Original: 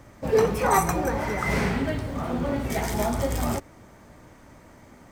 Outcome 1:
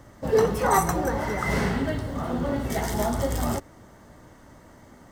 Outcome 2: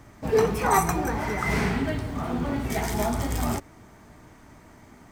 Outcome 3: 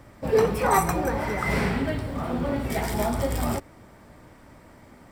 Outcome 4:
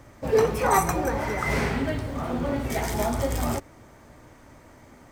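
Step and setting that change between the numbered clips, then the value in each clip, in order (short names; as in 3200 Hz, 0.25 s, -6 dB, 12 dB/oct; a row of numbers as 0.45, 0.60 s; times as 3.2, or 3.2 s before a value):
notch, frequency: 2400, 540, 6400, 190 Hz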